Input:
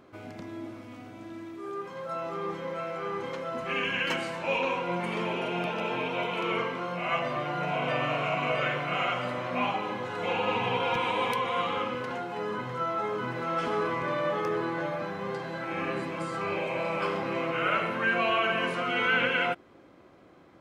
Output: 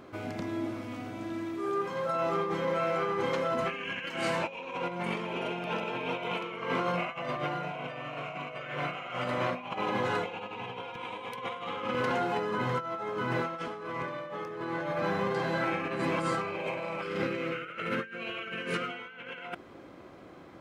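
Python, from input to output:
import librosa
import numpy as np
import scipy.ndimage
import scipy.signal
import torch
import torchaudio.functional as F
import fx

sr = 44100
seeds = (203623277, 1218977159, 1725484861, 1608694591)

y = fx.spec_box(x, sr, start_s=17.03, length_s=1.85, low_hz=540.0, high_hz=1200.0, gain_db=-11)
y = fx.over_compress(y, sr, threshold_db=-34.0, ratio=-0.5)
y = y * 10.0 ** (1.5 / 20.0)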